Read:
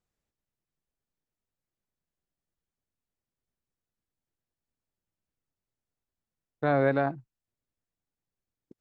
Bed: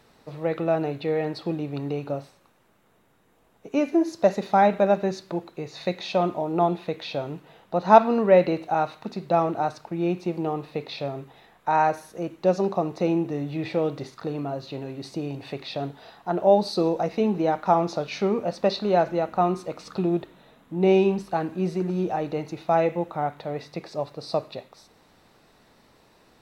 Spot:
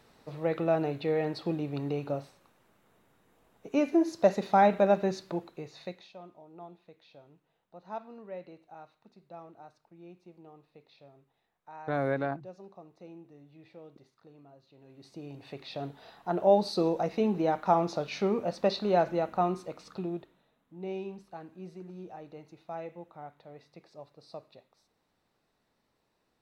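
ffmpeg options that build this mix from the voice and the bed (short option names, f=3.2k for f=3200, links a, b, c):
-filter_complex "[0:a]adelay=5250,volume=-5.5dB[a];[1:a]volume=17.5dB,afade=t=out:st=5.24:d=0.88:silence=0.0794328,afade=t=in:st=14.76:d=1.49:silence=0.0891251,afade=t=out:st=19.21:d=1.29:silence=0.199526[b];[a][b]amix=inputs=2:normalize=0"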